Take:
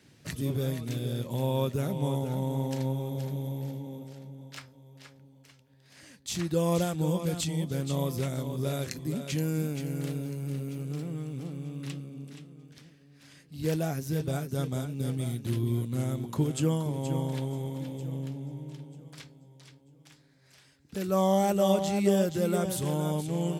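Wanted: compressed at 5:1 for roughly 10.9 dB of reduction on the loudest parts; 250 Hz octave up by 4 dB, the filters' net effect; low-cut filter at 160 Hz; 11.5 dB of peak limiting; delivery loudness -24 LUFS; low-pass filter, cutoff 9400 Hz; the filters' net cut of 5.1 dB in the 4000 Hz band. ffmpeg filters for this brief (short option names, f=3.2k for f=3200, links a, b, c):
-af "highpass=160,lowpass=9.4k,equalizer=f=250:t=o:g=7.5,equalizer=f=4k:t=o:g=-6.5,acompressor=threshold=-29dB:ratio=5,volume=14dB,alimiter=limit=-15.5dB:level=0:latency=1"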